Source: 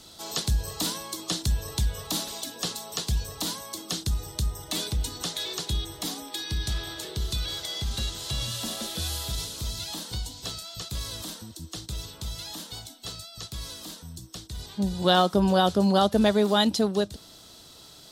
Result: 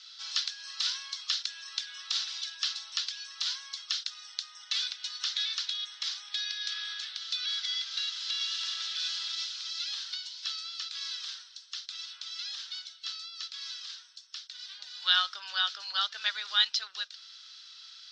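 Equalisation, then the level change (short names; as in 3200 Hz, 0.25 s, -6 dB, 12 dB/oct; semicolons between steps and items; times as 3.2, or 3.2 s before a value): Chebyshev band-pass 1400–5500 Hz, order 3; air absorption 98 m; high shelf 4200 Hz +11.5 dB; 0.0 dB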